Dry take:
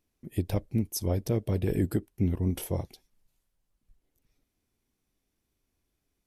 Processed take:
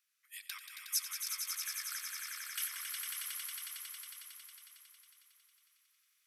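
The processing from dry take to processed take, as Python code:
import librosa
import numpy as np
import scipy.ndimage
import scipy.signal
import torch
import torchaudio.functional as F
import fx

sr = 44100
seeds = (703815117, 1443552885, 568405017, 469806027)

y = scipy.signal.sosfilt(scipy.signal.butter(12, 1200.0, 'highpass', fs=sr, output='sos'), x)
y = fx.echo_swell(y, sr, ms=91, loudest=5, wet_db=-6.5)
y = fx.rider(y, sr, range_db=3, speed_s=2.0)
y = y * librosa.db_to_amplitude(1.0)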